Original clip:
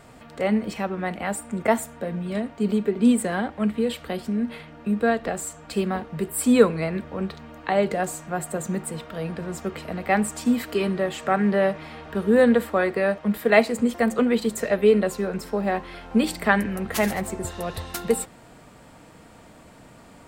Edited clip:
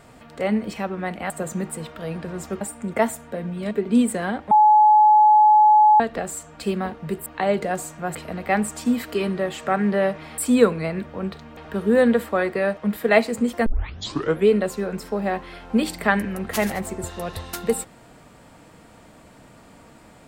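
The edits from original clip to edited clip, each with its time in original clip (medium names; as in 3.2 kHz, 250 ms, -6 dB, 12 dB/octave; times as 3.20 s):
2.40–2.81 s: delete
3.61–5.10 s: bleep 851 Hz -10 dBFS
6.36–7.55 s: move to 11.98 s
8.44–9.75 s: move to 1.30 s
14.07 s: tape start 0.81 s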